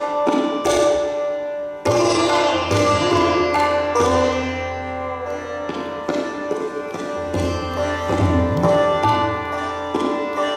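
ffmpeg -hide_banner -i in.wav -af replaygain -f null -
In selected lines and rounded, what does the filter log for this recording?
track_gain = +0.7 dB
track_peak = 0.406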